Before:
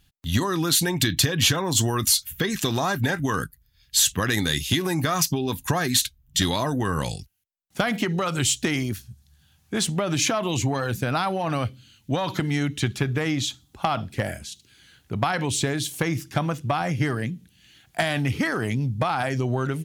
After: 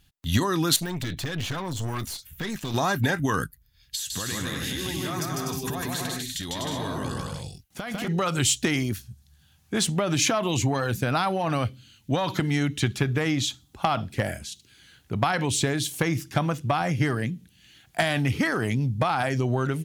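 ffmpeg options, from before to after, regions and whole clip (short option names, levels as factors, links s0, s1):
-filter_complex "[0:a]asettb=1/sr,asplit=3[s0][s1][s2];[s0]atrim=end=0.764[s3];[s1]atrim=start=0.76:end=2.74,asetpts=PTS-STARTPTS,afade=t=in:d=0.004:c=qsin,afade=t=out:st=1.976:d=0.004:c=qsin,deesser=0.75,equalizer=f=430:w=1.5:g=-5,aeval=exprs='(tanh(20*val(0)+0.45)-tanh(0.45))/20':c=same[s4];[s2]atrim=start=2.736[s5];[s3][s4]acrossfade=d=0.004:c1=hsin:c2=qsin[s6];[s6][s5]acrossfade=d=0.004:c1=qsin:c2=hsin,asettb=1/sr,asplit=3[s7][s8][s9];[s7]atrim=end=3.954[s10];[s8]atrim=start=3.95:end=8.08,asetpts=PTS-STARTPTS,afade=t=in:d=0.004:c=qsin,afade=t=out:st=4.126:d=0.004:c=qsin,acompressor=threshold=0.0316:ratio=6:attack=3.2:release=140:knee=1:detection=peak,aecho=1:1:150|247.5|310.9|352.1|378.8:0.794|0.631|0.501|0.398|0.316,atrim=end_sample=182133[s11];[s9]atrim=start=8.076[s12];[s10][s11]acrossfade=d=0.004:c1=hsin:c2=qsin[s13];[s13][s12]acrossfade=d=0.004:c1=qsin:c2=hsin"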